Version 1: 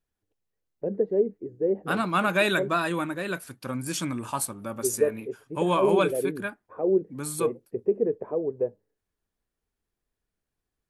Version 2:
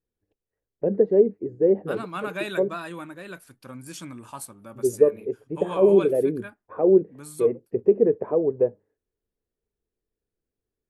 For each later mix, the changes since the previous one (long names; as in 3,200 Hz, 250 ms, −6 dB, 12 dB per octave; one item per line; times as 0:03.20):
first voice +6.0 dB
second voice −8.5 dB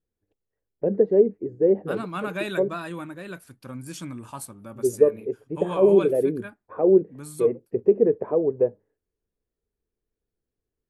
second voice: add low-shelf EQ 260 Hz +6.5 dB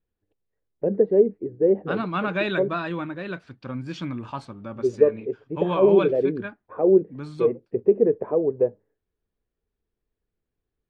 second voice +5.0 dB
master: add low-pass filter 4,300 Hz 24 dB per octave